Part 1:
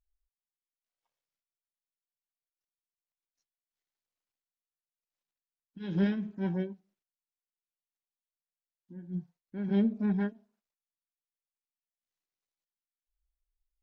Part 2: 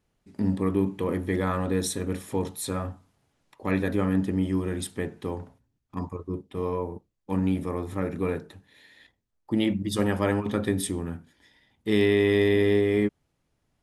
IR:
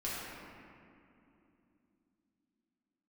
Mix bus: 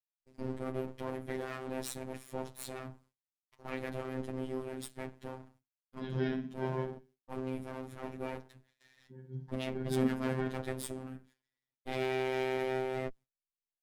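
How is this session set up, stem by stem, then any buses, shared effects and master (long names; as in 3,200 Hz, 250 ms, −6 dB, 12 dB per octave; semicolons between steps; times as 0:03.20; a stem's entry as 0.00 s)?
+0.5 dB, 0.20 s, no send, echo send −10 dB, no processing
−7.0 dB, 0.00 s, no send, no echo send, lower of the sound and its delayed copy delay 8.1 ms; noise gate with hold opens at −55 dBFS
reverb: not used
echo: repeating echo 60 ms, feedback 32%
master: noise gate with hold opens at −54 dBFS; phases set to zero 130 Hz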